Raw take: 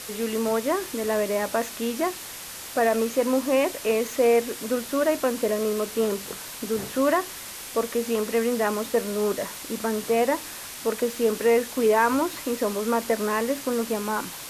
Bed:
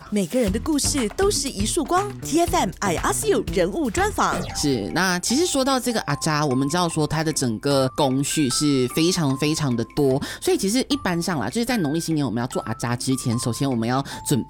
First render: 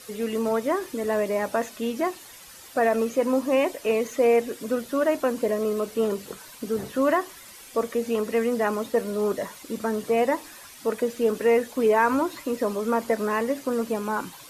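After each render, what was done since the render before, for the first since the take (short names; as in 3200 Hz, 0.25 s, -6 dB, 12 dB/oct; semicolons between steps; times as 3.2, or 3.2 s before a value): denoiser 11 dB, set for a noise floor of -38 dBFS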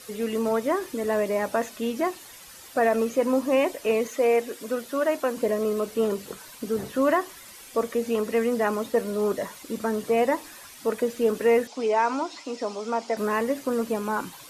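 4.08–5.37 low shelf 200 Hz -11.5 dB; 11.67–13.17 speaker cabinet 320–7400 Hz, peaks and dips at 360 Hz -6 dB, 540 Hz -7 dB, 770 Hz +5 dB, 1100 Hz -5 dB, 1700 Hz -8 dB, 5300 Hz +6 dB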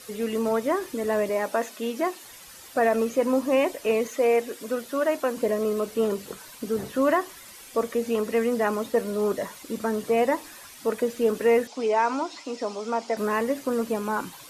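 1.29–2.24 HPF 230 Hz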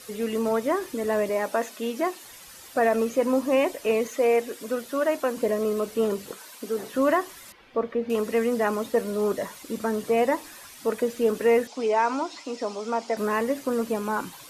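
6.31–6.93 HPF 280 Hz; 7.52–8.1 air absorption 340 m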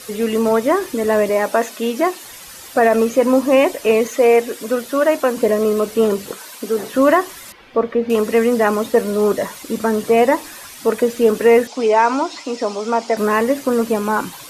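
gain +9 dB; limiter -3 dBFS, peak gain reduction 2 dB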